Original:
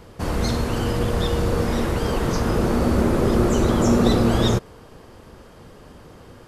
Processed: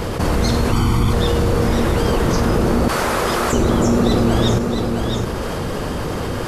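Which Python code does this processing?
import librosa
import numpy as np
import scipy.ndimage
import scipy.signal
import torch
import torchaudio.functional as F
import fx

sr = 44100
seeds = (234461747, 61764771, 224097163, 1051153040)

y = fx.comb(x, sr, ms=0.9, depth=0.94, at=(0.72, 1.13))
y = fx.highpass(y, sr, hz=890.0, slope=12, at=(2.88, 3.53))
y = y + 10.0 ** (-16.0 / 20.0) * np.pad(y, (int(667 * sr / 1000.0), 0))[:len(y)]
y = fx.env_flatten(y, sr, amount_pct=70)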